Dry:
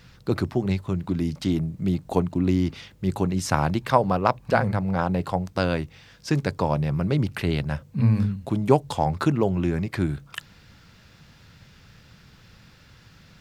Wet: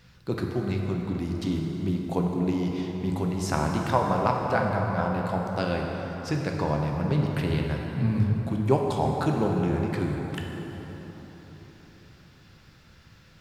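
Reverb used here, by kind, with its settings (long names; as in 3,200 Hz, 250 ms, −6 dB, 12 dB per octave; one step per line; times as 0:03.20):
dense smooth reverb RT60 4.3 s, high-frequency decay 0.55×, DRR 0 dB
level −5.5 dB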